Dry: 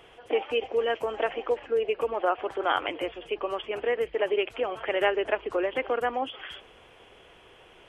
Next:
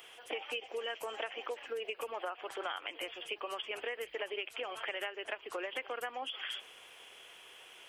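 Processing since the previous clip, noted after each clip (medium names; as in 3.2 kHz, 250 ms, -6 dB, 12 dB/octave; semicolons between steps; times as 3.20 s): tilt EQ +4.5 dB/octave; compression 12:1, threshold -31 dBFS, peak gain reduction 14.5 dB; trim -4 dB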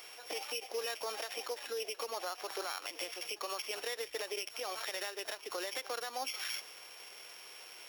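sorted samples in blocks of 8 samples; bass shelf 400 Hz -5.5 dB; peak limiter -32 dBFS, peak gain reduction 8 dB; trim +3.5 dB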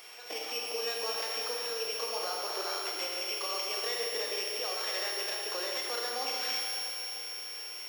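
Schroeder reverb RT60 3.1 s, combs from 26 ms, DRR -1.5 dB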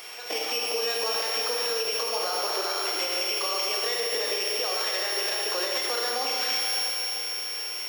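peak limiter -27 dBFS, peak gain reduction 5.5 dB; trim +8.5 dB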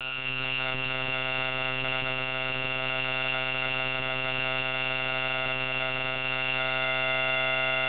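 bit-reversed sample order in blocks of 64 samples; in parallel at -9.5 dB: sine folder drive 15 dB, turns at -18 dBFS; on the sum: monotone LPC vocoder at 8 kHz 130 Hz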